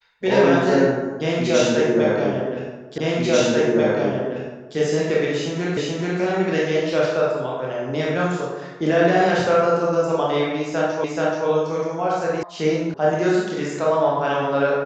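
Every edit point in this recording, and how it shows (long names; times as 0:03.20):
0:02.98: the same again, the last 1.79 s
0:05.77: the same again, the last 0.43 s
0:11.04: the same again, the last 0.43 s
0:12.43: cut off before it has died away
0:12.94: cut off before it has died away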